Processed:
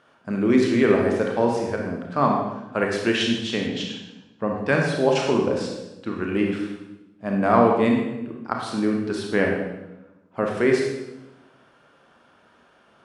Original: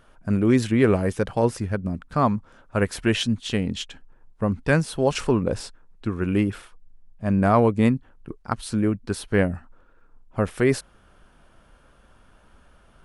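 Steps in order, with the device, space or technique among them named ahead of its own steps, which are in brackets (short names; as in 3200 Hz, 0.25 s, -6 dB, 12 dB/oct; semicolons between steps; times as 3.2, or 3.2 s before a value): supermarket ceiling speaker (BPF 240–5900 Hz; reverb RT60 1.0 s, pre-delay 26 ms, DRR 0 dB); 3.67–4.58 LPF 6900 Hz 12 dB/oct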